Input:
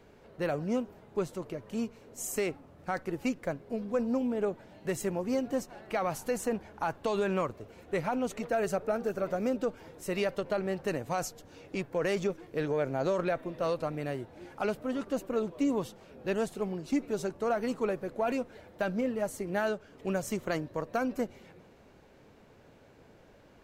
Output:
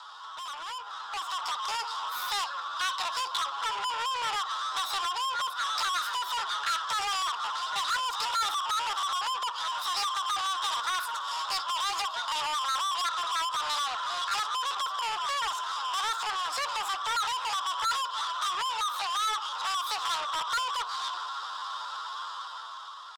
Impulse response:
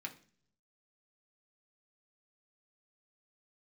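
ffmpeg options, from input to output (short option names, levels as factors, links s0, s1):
-filter_complex "[0:a]bandreject=f=2900:w=12,atempo=0.51,asplit=3[s0][s1][s2];[s0]bandpass=f=530:t=q:w=8,volume=1[s3];[s1]bandpass=f=1840:t=q:w=8,volume=0.501[s4];[s2]bandpass=f=2480:t=q:w=8,volume=0.355[s5];[s3][s4][s5]amix=inputs=3:normalize=0,acrossover=split=250|510|2000[s6][s7][s8][s9];[s8]alimiter=level_in=7.5:limit=0.0631:level=0:latency=1:release=31,volume=0.133[s10];[s6][s7][s10][s9]amix=inputs=4:normalize=0,acompressor=threshold=0.00316:ratio=3,equalizer=f=690:t=o:w=0.24:g=14,aecho=1:1:113:0.0891,asplit=2[s11][s12];[s12]highpass=f=720:p=1,volume=44.7,asoftclip=type=tanh:threshold=0.0237[s13];[s11][s13]amix=inputs=2:normalize=0,lowpass=f=4500:p=1,volume=0.501,equalizer=f=125:t=o:w=1:g=-8,equalizer=f=1000:t=o:w=1:g=9,equalizer=f=2000:t=o:w=1:g=6,equalizer=f=4000:t=o:w=1:g=7,asetrate=88200,aresample=44100,dynaudnorm=f=200:g=11:m=2.82,volume=0.631"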